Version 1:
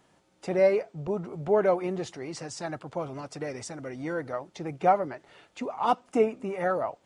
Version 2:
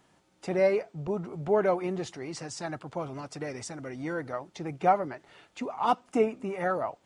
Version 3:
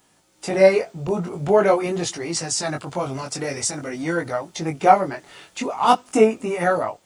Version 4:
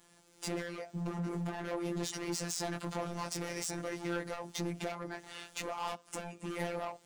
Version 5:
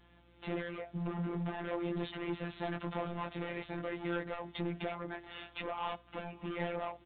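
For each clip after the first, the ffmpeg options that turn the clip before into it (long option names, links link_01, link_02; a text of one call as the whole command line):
ffmpeg -i in.wav -af "equalizer=frequency=530:width_type=o:width=0.69:gain=-3" out.wav
ffmpeg -i in.wav -af "crystalizer=i=2.5:c=0,flanger=delay=17.5:depth=5.2:speed=0.46,dynaudnorm=framelen=160:gausssize=5:maxgain=7dB,volume=4.5dB" out.wav
ffmpeg -i in.wav -af "acompressor=threshold=-27dB:ratio=6,volume=32dB,asoftclip=hard,volume=-32dB,afftfilt=real='hypot(re,im)*cos(PI*b)':imag='0':win_size=1024:overlap=0.75" out.wav
ffmpeg -i in.wav -af "aeval=exprs='val(0)+0.000501*(sin(2*PI*60*n/s)+sin(2*PI*2*60*n/s)/2+sin(2*PI*3*60*n/s)/3+sin(2*PI*4*60*n/s)/4+sin(2*PI*5*60*n/s)/5)':channel_layout=same,aecho=1:1:560:0.0631" -ar 8000 -c:a pcm_mulaw out.wav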